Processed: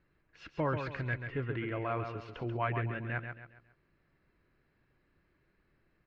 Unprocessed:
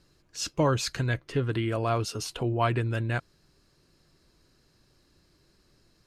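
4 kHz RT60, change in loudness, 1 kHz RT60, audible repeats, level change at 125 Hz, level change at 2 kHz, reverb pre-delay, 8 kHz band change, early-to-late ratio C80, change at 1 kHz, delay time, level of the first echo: none, -7.5 dB, none, 4, -8.0 dB, -3.5 dB, none, under -35 dB, none, -6.5 dB, 0.136 s, -7.0 dB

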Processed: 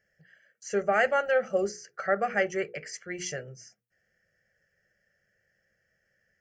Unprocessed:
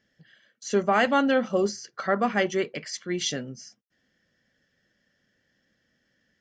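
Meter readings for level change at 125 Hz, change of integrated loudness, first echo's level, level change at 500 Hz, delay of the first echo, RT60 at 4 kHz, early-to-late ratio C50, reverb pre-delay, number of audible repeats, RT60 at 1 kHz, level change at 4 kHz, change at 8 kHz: -7.5 dB, -3.0 dB, none, -1.5 dB, none, none, none, none, none, none, -10.5 dB, -4.5 dB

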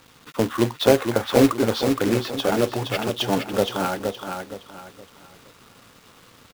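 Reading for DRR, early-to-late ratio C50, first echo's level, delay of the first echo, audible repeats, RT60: none, none, -5.5 dB, 0.468 s, 3, none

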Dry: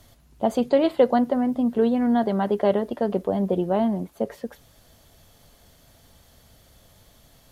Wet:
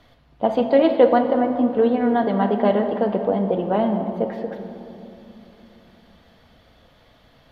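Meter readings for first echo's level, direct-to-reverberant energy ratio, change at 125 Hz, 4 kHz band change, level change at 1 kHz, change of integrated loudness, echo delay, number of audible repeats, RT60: none, 4.0 dB, +2.0 dB, +2.0 dB, +5.0 dB, +3.0 dB, none, none, 2.9 s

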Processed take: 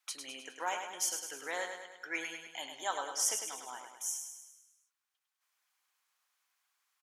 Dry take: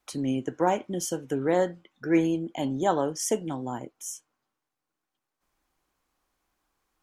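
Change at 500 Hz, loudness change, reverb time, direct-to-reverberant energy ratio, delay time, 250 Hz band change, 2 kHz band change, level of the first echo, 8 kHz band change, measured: -17.5 dB, -9.0 dB, none, none, 0.103 s, -27.0 dB, -0.5 dB, -6.5 dB, +1.0 dB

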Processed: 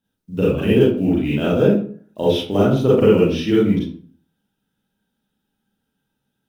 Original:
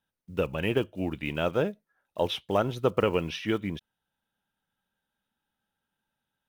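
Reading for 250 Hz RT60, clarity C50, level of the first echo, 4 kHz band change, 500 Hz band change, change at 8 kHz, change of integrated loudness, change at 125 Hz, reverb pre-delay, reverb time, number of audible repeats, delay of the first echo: 0.55 s, -1.0 dB, none, +6.5 dB, +12.0 dB, n/a, +12.0 dB, +13.5 dB, 34 ms, 0.45 s, none, none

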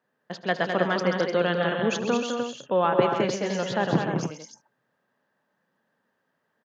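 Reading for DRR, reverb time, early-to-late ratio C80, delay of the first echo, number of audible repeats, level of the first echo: none, none, none, 76 ms, 5, -19.0 dB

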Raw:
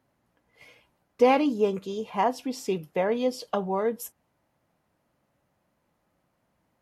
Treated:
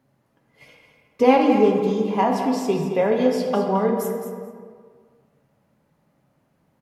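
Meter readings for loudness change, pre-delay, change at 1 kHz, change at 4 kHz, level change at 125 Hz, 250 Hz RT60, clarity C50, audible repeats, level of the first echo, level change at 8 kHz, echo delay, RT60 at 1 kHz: +6.5 dB, 3 ms, +5.5 dB, +3.5 dB, +10.0 dB, 1.8 s, 3.0 dB, 1, -10.0 dB, +3.0 dB, 0.216 s, 1.8 s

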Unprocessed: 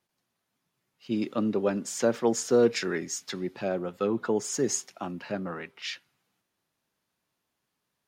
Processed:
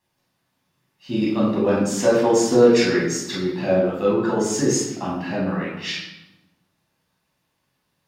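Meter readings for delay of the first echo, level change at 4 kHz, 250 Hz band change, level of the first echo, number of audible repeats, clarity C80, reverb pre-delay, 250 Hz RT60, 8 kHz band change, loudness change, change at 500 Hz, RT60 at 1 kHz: none, +8.5 dB, +9.5 dB, none, none, 5.0 dB, 12 ms, 1.4 s, +5.5 dB, +8.5 dB, +8.5 dB, 0.95 s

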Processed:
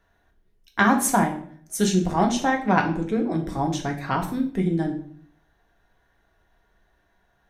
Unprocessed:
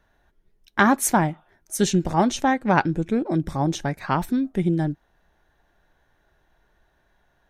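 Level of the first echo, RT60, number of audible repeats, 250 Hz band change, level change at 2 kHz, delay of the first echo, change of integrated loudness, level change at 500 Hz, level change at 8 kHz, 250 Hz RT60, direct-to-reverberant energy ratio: none, 0.55 s, none, -0.5 dB, 0.0 dB, none, -1.0 dB, -1.0 dB, -0.5 dB, 0.75 s, 2.0 dB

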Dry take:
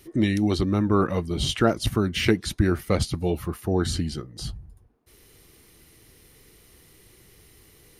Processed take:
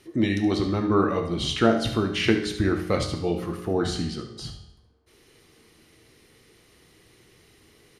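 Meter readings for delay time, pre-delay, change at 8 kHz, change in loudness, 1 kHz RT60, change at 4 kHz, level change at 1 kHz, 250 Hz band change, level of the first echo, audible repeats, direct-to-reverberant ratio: 72 ms, 5 ms, -3.5 dB, 0.0 dB, 0.75 s, 0.0 dB, +1.0 dB, 0.0 dB, -11.0 dB, 1, 4.0 dB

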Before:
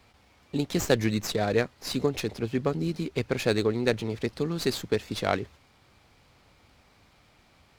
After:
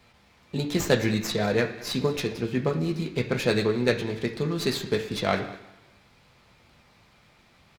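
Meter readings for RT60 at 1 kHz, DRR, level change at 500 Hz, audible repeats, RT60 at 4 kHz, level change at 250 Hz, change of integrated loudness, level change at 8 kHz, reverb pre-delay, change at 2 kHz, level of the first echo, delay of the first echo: 1.0 s, 1.0 dB, +1.5 dB, 1, 1.0 s, +1.5 dB, +1.5 dB, +0.5 dB, 3 ms, +3.0 dB, -20.0 dB, 0.198 s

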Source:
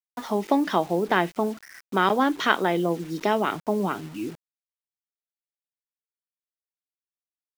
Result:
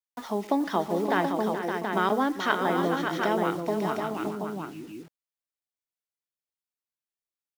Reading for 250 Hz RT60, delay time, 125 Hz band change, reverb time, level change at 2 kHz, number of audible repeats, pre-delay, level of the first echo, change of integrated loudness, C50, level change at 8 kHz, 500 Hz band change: none, 0.12 s, -2.0 dB, none, -3.0 dB, 4, none, -19.5 dB, -3.0 dB, none, -2.0 dB, -2.0 dB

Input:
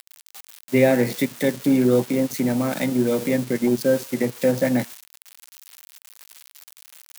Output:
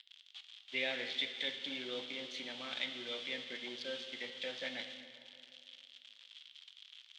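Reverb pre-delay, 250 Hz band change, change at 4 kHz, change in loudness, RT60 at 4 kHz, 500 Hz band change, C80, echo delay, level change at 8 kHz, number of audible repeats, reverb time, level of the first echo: 5 ms, -30.5 dB, 0.0 dB, -18.5 dB, 1.9 s, -24.5 dB, 9.5 dB, none, -24.0 dB, none, 2.4 s, none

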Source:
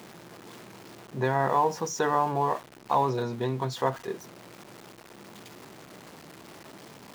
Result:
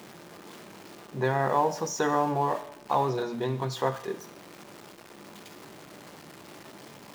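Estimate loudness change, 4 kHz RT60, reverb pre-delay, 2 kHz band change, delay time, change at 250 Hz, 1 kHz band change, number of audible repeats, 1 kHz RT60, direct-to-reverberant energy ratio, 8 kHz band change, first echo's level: -0.5 dB, 0.80 s, 3 ms, 0.0 dB, none, +1.0 dB, -1.5 dB, none, 0.80 s, 9.5 dB, +0.5 dB, none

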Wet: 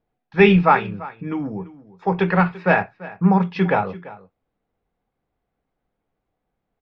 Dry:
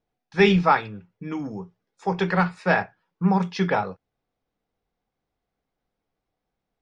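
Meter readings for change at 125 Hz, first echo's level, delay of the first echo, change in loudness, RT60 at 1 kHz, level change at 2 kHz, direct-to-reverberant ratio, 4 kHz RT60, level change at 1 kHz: +4.5 dB, -18.5 dB, 0.34 s, +4.0 dB, none, +3.5 dB, none, none, +3.5 dB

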